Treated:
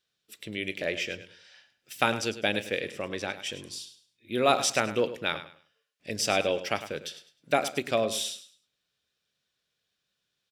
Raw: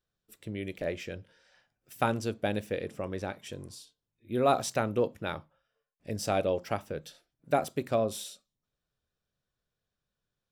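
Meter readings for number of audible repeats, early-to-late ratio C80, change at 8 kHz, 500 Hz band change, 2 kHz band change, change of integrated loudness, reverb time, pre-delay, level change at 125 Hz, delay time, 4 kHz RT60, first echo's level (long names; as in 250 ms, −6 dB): 2, no reverb audible, +8.5 dB, +1.5 dB, +9.0 dB, +3.0 dB, no reverb audible, no reverb audible, −4.0 dB, 103 ms, no reverb audible, −13.0 dB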